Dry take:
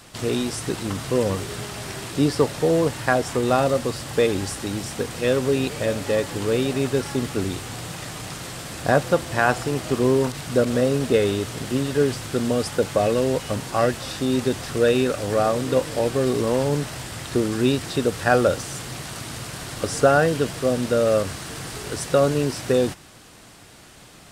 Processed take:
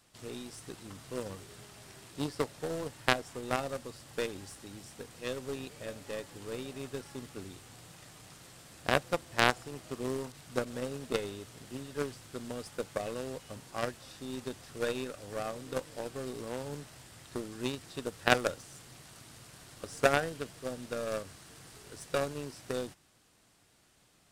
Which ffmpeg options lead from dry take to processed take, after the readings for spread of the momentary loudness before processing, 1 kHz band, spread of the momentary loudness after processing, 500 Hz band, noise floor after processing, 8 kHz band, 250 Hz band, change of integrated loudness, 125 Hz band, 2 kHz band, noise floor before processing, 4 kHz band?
12 LU, −11.0 dB, 20 LU, −15.5 dB, −66 dBFS, −14.0 dB, −17.0 dB, −13.5 dB, −17.5 dB, −8.5 dB, −47 dBFS, −10.0 dB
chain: -af "highshelf=frequency=4400:gain=3.5,aeval=exprs='0.708*(cos(1*acos(clip(val(0)/0.708,-1,1)))-cos(1*PI/2))+0.0398*(cos(2*acos(clip(val(0)/0.708,-1,1)))-cos(2*PI/2))+0.282*(cos(3*acos(clip(val(0)/0.708,-1,1)))-cos(3*PI/2))+0.0398*(cos(5*acos(clip(val(0)/0.708,-1,1)))-cos(5*PI/2))':channel_layout=same,volume=1dB"

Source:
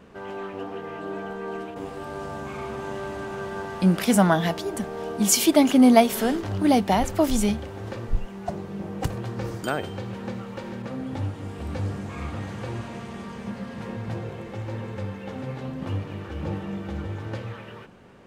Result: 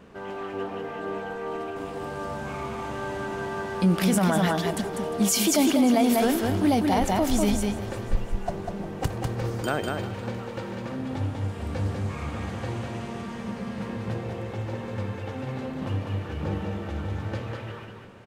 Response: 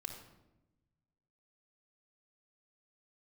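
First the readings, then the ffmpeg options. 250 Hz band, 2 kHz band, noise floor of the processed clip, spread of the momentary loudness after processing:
−2.0 dB, −0.5 dB, −37 dBFS, 13 LU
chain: -filter_complex "[0:a]asplit=2[link_01][link_02];[link_02]aecho=0:1:197:0.596[link_03];[link_01][link_03]amix=inputs=2:normalize=0,alimiter=limit=-13.5dB:level=0:latency=1:release=30,asplit=2[link_04][link_05];[link_05]aecho=0:1:353|706|1059|1412:0.15|0.0643|0.0277|0.0119[link_06];[link_04][link_06]amix=inputs=2:normalize=0"

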